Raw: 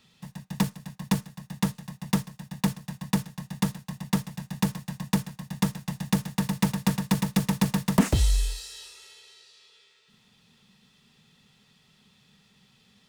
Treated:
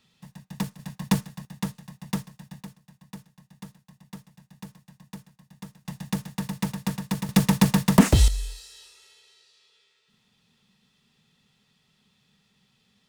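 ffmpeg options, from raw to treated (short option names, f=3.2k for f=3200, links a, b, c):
-af "asetnsamples=n=441:p=0,asendcmd='0.79 volume volume 2.5dB;1.45 volume volume -4dB;2.63 volume volume -16.5dB;5.85 volume volume -4dB;7.29 volume volume 5dB;8.28 volume volume -5.5dB',volume=-4.5dB"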